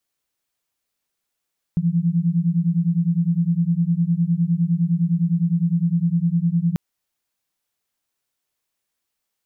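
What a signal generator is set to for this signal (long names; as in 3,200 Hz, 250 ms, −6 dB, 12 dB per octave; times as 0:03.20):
held notes E3/F3 sine, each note −19.5 dBFS 4.99 s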